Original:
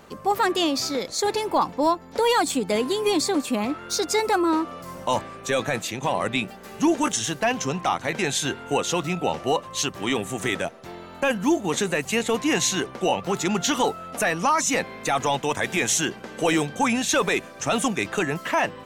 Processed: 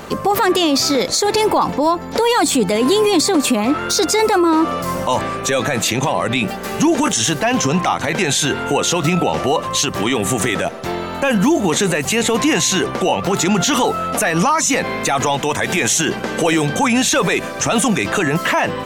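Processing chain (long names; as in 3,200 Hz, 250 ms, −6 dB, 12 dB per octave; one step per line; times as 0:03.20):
boost into a limiter +22.5 dB
level −6.5 dB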